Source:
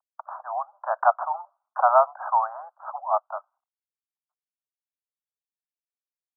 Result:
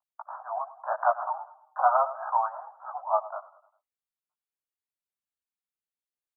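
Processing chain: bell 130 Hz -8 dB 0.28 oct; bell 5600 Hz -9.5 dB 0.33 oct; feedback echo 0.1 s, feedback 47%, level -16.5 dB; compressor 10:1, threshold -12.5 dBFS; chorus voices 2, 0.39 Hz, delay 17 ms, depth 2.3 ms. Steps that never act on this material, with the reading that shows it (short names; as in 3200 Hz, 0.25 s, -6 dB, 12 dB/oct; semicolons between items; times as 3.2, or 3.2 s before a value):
bell 130 Hz: input band starts at 510 Hz; bell 5600 Hz: input band ends at 1600 Hz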